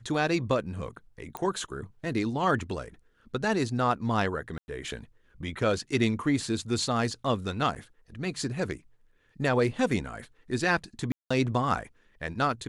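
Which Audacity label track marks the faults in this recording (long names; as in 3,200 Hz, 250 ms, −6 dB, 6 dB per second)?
1.370000	1.370000	click −19 dBFS
4.580000	4.680000	drop-out 101 ms
7.750000	7.760000	drop-out 7.7 ms
11.120000	11.300000	drop-out 185 ms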